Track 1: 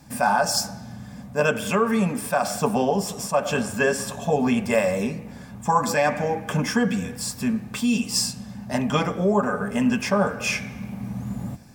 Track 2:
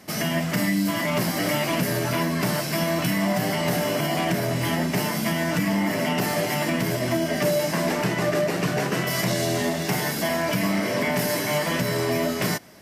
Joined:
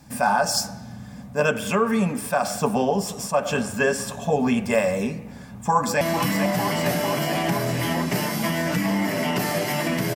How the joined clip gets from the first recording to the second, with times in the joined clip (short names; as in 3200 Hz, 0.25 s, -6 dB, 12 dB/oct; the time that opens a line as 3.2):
track 1
5.45–6.01 echo throw 0.45 s, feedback 80%, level -7.5 dB
6.01 switch to track 2 from 2.83 s